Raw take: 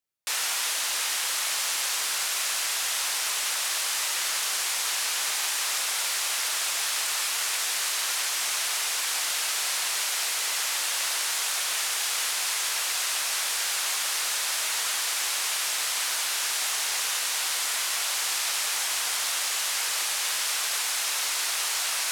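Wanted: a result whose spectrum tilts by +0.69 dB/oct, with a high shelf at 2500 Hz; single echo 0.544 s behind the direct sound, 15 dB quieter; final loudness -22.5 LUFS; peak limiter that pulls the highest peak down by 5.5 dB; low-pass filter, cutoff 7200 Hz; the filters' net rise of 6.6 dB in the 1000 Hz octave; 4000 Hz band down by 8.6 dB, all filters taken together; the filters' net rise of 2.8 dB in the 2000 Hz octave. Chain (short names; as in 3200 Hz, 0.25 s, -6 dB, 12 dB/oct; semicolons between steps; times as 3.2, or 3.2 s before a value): LPF 7200 Hz; bell 1000 Hz +8 dB; bell 2000 Hz +6 dB; high shelf 2500 Hz -6 dB; bell 4000 Hz -8 dB; limiter -22.5 dBFS; echo 0.544 s -15 dB; gain +8 dB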